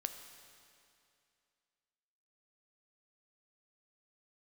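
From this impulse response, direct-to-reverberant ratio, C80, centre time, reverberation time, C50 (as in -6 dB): 7.0 dB, 9.0 dB, 31 ms, 2.5 s, 8.0 dB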